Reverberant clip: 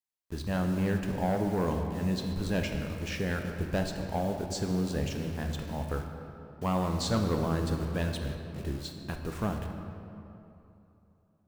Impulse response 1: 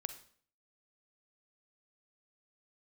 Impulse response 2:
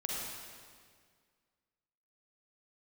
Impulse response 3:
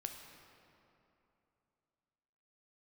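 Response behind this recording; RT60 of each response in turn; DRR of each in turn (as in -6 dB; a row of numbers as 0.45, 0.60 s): 3; 0.55, 1.9, 3.0 s; 10.0, -3.5, 3.5 dB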